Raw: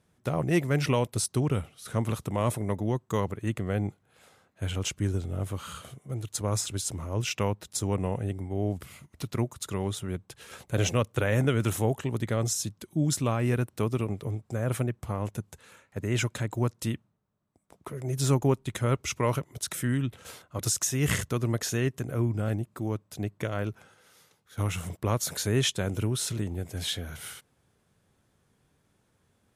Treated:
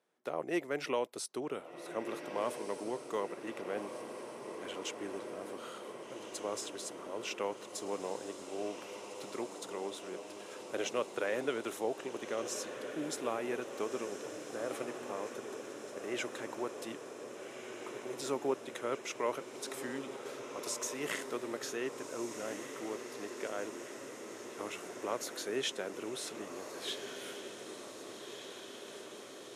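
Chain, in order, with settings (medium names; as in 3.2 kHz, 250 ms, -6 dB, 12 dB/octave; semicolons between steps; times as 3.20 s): ladder high-pass 280 Hz, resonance 20%; treble shelf 7.3 kHz -9.5 dB; echo that smears into a reverb 1586 ms, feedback 73%, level -8 dB; trim -1.5 dB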